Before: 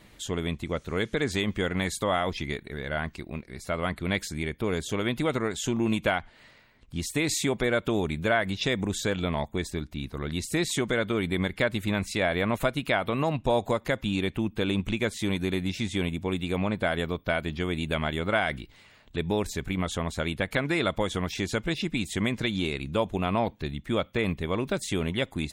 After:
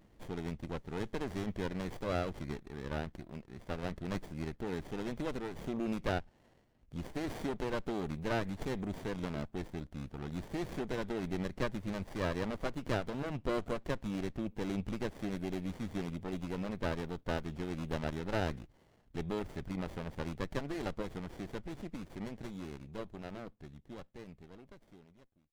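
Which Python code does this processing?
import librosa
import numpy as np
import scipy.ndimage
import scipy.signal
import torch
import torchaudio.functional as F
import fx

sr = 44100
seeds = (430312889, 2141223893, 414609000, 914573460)

y = fx.fade_out_tail(x, sr, length_s=5.63)
y = fx.running_max(y, sr, window=33)
y = F.gain(torch.from_numpy(y), -7.5).numpy()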